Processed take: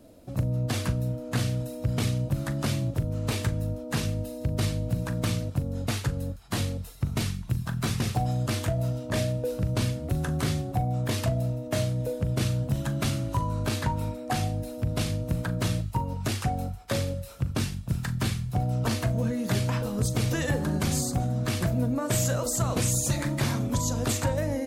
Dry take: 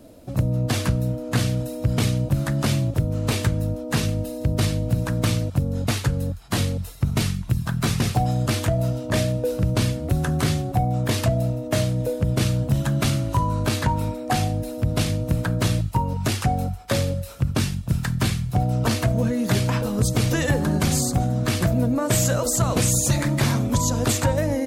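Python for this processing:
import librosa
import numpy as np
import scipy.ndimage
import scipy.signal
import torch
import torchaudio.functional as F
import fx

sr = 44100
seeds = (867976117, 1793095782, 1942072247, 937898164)

y = fx.doubler(x, sr, ms=40.0, db=-13.5)
y = F.gain(torch.from_numpy(y), -6.0).numpy()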